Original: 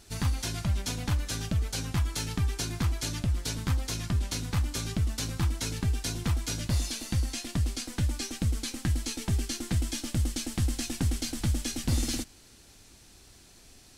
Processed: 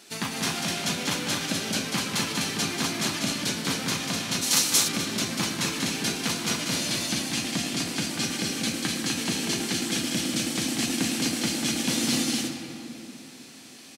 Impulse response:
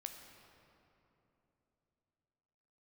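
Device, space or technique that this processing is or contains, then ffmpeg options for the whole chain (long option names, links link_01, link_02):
stadium PA: -filter_complex "[0:a]highpass=frequency=190:width=0.5412,highpass=frequency=190:width=1.3066,equalizer=frequency=2600:width_type=o:width=1.4:gain=4.5,aecho=1:1:192.4|250.7:0.562|0.708[link_01];[1:a]atrim=start_sample=2205[link_02];[link_01][link_02]afir=irnorm=-1:irlink=0,asplit=3[link_03][link_04][link_05];[link_03]afade=type=out:start_time=4.41:duration=0.02[link_06];[link_04]bass=frequency=250:gain=-6,treble=frequency=4000:gain=13,afade=type=in:start_time=4.41:duration=0.02,afade=type=out:start_time=4.87:duration=0.02[link_07];[link_05]afade=type=in:start_time=4.87:duration=0.02[link_08];[link_06][link_07][link_08]amix=inputs=3:normalize=0,volume=8.5dB"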